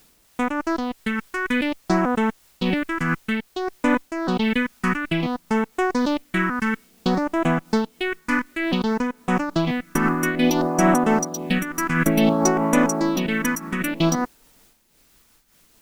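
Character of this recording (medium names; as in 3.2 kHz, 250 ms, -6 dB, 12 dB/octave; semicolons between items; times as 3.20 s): phasing stages 4, 0.57 Hz, lowest notch 610–4400 Hz; a quantiser's noise floor 10-bit, dither triangular; random flutter of the level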